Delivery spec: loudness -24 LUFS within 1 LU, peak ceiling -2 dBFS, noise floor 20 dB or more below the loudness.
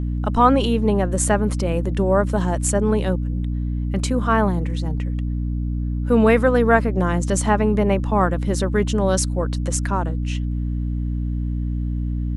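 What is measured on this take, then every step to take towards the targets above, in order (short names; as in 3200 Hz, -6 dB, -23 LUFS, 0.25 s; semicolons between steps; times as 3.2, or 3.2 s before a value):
hum 60 Hz; harmonics up to 300 Hz; hum level -21 dBFS; loudness -20.5 LUFS; peak -1.5 dBFS; loudness target -24.0 LUFS
-> de-hum 60 Hz, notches 5; gain -3.5 dB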